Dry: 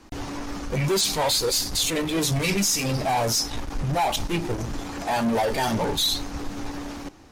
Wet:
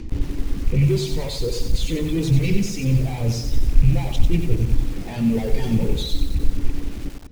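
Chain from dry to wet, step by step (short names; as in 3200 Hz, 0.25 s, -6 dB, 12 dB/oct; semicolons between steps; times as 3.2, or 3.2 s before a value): rattling part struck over -28 dBFS, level -25 dBFS; de-hum 48.93 Hz, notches 28; reverb removal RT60 1 s; band shelf 1000 Hz -13 dB; upward compressor, threshold -34 dBFS; RIAA curve playback; on a send: narrowing echo 0.126 s, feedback 77%, band-pass 650 Hz, level -18 dB; on the sum: lo-fi delay 92 ms, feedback 55%, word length 6-bit, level -6 dB; gain -1.5 dB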